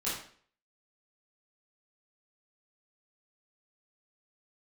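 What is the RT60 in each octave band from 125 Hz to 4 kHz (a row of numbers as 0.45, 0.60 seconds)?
0.50, 0.55, 0.50, 0.50, 0.50, 0.45 seconds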